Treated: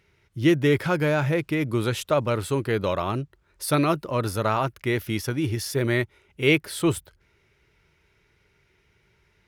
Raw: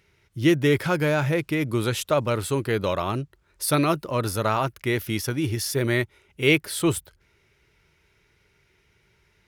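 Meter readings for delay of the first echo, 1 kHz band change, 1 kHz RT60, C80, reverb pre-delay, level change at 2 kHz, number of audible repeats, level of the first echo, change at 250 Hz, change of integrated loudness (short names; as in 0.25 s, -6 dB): none, -0.5 dB, none, none, none, -1.0 dB, none, none, 0.0 dB, -0.5 dB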